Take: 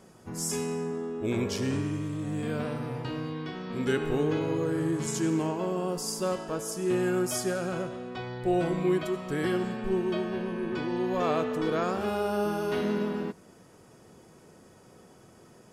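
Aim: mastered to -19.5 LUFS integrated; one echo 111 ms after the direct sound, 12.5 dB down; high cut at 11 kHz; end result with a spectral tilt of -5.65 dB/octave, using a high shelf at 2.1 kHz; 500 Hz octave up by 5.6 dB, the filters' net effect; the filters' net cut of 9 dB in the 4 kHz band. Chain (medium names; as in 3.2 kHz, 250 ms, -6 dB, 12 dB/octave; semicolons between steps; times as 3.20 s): low-pass 11 kHz; peaking EQ 500 Hz +8 dB; treble shelf 2.1 kHz -5.5 dB; peaking EQ 4 kHz -7 dB; delay 111 ms -12.5 dB; trim +6.5 dB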